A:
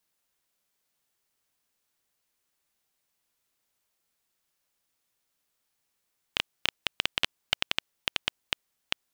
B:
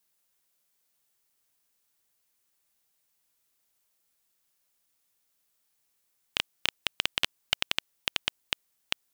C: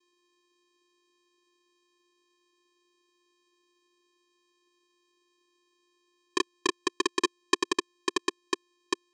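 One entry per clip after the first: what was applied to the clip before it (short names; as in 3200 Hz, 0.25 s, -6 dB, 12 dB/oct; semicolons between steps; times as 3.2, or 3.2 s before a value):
high shelf 6500 Hz +7 dB; gain -1 dB
vocoder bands 4, square 352 Hz; gain +3 dB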